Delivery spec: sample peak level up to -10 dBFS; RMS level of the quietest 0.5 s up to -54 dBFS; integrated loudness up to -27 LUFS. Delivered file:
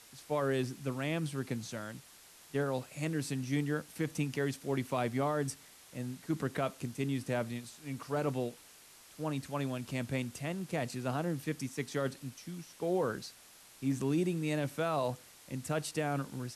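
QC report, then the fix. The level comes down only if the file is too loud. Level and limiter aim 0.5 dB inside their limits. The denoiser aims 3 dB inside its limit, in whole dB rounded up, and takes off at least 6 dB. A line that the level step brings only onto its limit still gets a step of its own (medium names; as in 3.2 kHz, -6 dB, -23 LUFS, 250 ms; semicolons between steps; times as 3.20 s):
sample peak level -22.5 dBFS: pass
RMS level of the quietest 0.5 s -57 dBFS: pass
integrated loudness -36.0 LUFS: pass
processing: none needed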